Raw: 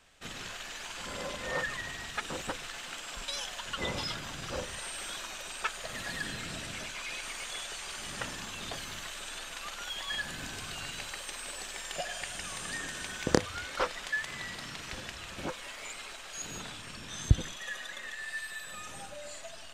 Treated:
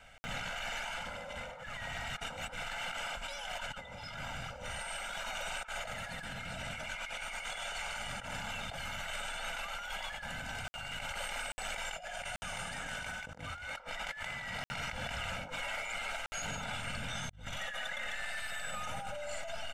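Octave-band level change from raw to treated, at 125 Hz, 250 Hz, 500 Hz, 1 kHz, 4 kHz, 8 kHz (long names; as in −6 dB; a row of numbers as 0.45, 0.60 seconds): −7.5, −9.0, −4.5, +0.5, −3.0, −6.0 decibels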